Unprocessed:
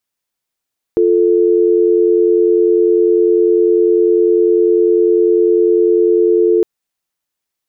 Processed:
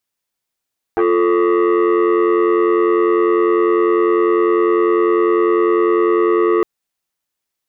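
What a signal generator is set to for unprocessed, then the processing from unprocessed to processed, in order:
call progress tone dial tone, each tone -11 dBFS 5.66 s
core saturation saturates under 690 Hz

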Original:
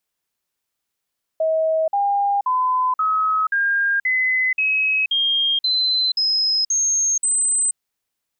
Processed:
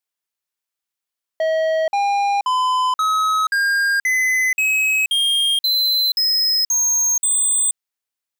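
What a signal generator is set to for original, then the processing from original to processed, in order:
stepped sine 639 Hz up, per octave 3, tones 12, 0.48 s, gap 0.05 s -16 dBFS
low shelf 470 Hz -9 dB; sample leveller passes 3

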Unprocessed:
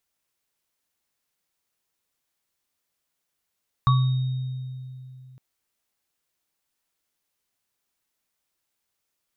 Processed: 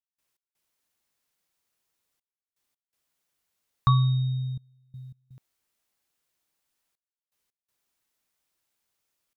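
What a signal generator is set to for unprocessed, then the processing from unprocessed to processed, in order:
sine partials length 1.51 s, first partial 129 Hz, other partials 1130/3730 Hz, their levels -1.5/-17.5 dB, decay 2.98 s, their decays 0.36/1.78 s, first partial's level -15 dB
step gate ".x.xxxxxxxxx." 82 bpm -24 dB

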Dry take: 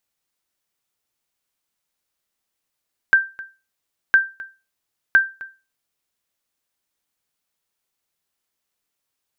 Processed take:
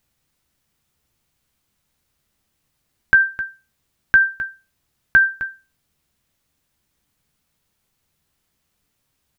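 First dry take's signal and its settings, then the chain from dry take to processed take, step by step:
sonar ping 1570 Hz, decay 0.29 s, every 1.01 s, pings 3, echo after 0.26 s, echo -20.5 dB -5.5 dBFS
tone controls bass +14 dB, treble -2 dB; in parallel at -2.5 dB: negative-ratio compressor -24 dBFS, ratio -1; on the sum: doubler 14 ms -11 dB

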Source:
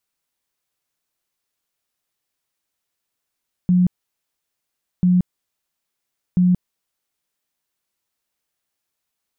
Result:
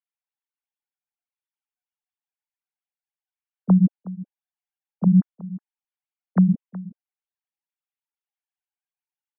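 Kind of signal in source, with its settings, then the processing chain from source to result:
tone bursts 180 Hz, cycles 32, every 1.34 s, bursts 3, -11.5 dBFS
sine-wave speech; echo 0.368 s -17.5 dB

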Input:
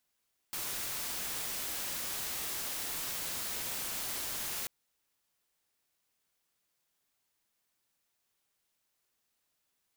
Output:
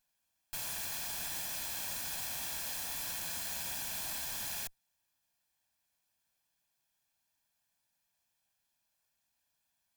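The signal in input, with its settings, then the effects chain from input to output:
noise white, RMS -37.5 dBFS 4.14 s
minimum comb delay 1.2 ms

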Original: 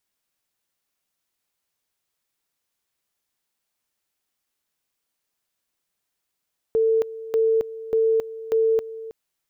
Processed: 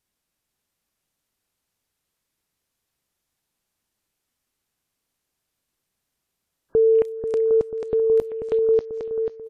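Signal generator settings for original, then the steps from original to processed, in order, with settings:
two-level tone 447 Hz -16 dBFS, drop 16 dB, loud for 0.27 s, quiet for 0.32 s, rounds 4
low shelf 340 Hz +9.5 dB; on a send: feedback echo 0.489 s, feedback 47%, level -6.5 dB; on the sum: WMA 128 kbps 32000 Hz

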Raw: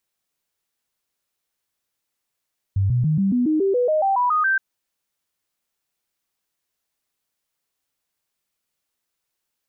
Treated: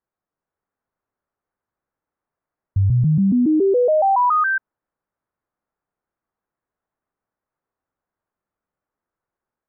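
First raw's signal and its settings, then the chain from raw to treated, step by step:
stepped sine 97.6 Hz up, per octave 3, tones 13, 0.14 s, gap 0.00 s -16 dBFS
LPF 1500 Hz 24 dB/oct; AGC gain up to 3.5 dB

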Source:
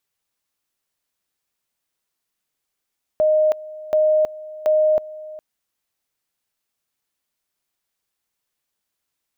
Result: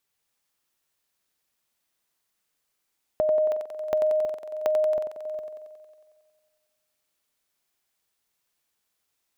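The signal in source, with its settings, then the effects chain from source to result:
two-level tone 618 Hz -13 dBFS, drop 19 dB, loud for 0.32 s, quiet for 0.41 s, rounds 3
compressor, threshold -23 dBFS; on a send: thinning echo 91 ms, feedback 73%, high-pass 210 Hz, level -5 dB

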